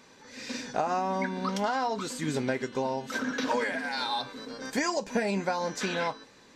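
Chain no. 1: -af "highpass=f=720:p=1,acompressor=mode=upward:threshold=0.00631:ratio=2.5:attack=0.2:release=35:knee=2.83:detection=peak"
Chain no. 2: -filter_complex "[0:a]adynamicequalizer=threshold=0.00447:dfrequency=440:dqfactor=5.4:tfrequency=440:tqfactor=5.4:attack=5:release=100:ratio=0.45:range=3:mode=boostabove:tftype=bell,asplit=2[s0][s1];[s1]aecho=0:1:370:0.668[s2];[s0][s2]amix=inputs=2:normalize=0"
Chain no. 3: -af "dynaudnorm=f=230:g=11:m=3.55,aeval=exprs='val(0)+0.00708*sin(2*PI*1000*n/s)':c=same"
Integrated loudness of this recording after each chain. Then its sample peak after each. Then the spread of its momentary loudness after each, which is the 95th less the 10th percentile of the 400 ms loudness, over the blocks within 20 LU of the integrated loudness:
-33.5 LUFS, -28.5 LUFS, -21.5 LUFS; -17.5 dBFS, -13.0 dBFS, -5.0 dBFS; 7 LU, 6 LU, 10 LU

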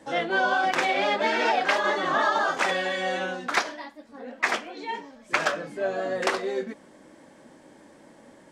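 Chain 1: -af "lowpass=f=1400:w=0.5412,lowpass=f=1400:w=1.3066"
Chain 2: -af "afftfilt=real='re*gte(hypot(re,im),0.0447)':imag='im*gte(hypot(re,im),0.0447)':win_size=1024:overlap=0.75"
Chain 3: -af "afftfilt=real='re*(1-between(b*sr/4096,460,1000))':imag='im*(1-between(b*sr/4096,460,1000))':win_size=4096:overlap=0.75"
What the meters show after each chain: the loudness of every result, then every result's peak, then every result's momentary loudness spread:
-28.0 LUFS, -26.0 LUFS, -27.5 LUFS; -11.5 dBFS, -8.0 dBFS, -7.5 dBFS; 13 LU, 13 LU, 14 LU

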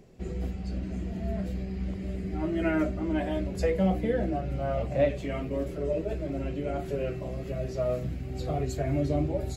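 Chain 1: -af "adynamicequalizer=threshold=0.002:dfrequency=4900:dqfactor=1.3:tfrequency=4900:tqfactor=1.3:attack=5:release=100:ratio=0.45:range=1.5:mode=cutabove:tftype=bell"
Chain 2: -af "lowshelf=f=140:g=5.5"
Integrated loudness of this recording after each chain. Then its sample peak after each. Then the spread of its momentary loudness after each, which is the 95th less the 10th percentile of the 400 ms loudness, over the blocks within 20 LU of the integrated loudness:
-30.5 LUFS, -29.0 LUFS; -13.0 dBFS, -12.5 dBFS; 8 LU, 6 LU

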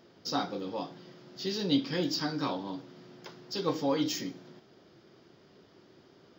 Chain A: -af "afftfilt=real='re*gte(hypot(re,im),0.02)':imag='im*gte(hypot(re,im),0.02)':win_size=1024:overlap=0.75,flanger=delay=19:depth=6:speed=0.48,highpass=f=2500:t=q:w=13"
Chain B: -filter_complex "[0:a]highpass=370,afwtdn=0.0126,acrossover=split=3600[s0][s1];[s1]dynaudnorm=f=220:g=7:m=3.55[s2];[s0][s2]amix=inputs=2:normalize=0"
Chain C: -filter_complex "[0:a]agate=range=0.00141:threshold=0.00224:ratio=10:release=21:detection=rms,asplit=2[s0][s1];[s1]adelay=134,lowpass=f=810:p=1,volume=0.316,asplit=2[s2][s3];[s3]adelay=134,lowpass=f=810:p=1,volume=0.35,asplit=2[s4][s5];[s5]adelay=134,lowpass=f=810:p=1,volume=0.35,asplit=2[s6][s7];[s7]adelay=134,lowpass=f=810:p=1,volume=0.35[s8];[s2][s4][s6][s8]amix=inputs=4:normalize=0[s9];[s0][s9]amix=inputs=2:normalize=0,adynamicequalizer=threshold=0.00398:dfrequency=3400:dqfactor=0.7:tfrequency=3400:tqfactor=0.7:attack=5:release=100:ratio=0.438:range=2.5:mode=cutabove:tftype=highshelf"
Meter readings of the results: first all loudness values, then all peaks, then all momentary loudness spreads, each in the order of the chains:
-36.5 LUFS, -32.0 LUFS, -33.0 LUFS; -17.5 dBFS, -12.0 dBFS, -15.5 dBFS; 11 LU, 18 LU, 20 LU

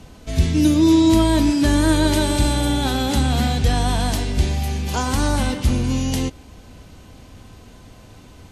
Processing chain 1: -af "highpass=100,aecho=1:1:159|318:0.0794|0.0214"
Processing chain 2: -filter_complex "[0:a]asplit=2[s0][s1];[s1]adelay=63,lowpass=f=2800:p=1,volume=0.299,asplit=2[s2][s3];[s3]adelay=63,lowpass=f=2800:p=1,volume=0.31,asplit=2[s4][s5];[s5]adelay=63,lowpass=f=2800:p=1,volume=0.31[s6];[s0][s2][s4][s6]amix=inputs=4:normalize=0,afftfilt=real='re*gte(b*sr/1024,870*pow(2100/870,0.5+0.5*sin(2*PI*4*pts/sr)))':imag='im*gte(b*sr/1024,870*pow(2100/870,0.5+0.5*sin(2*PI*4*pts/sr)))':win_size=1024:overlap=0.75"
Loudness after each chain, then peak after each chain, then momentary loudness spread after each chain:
-20.0 LUFS, -28.0 LUFS; -5.5 dBFS, -13.0 dBFS; 11 LU, 8 LU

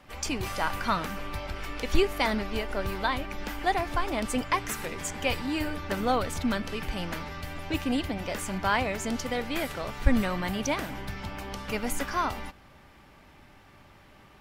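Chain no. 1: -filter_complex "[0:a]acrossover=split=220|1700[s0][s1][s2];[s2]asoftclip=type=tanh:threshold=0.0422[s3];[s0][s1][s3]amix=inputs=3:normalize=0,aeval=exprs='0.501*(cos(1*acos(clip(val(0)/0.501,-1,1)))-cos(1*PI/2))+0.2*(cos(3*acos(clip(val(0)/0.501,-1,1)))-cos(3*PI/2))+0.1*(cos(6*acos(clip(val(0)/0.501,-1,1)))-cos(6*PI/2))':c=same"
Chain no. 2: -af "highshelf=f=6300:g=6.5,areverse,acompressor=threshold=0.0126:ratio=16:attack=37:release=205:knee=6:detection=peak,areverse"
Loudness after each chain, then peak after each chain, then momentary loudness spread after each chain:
-35.5 LUFS, -40.0 LUFS; -5.5 dBFS, -23.0 dBFS; 16 LU, 15 LU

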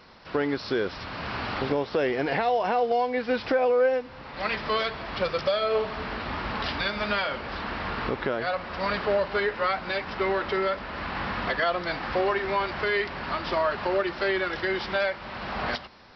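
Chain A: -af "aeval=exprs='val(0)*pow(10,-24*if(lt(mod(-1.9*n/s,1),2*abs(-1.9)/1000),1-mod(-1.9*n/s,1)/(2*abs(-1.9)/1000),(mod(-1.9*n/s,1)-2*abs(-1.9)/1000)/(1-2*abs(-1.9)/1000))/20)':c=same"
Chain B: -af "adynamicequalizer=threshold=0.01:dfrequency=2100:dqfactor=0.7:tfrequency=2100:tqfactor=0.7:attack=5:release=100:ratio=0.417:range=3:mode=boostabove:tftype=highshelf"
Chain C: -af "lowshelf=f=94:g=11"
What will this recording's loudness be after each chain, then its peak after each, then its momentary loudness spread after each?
-34.5 LUFS, -26.5 LUFS, -27.0 LUFS; -15.5 dBFS, -13.0 dBFS, -13.0 dBFS; 10 LU, 7 LU, 7 LU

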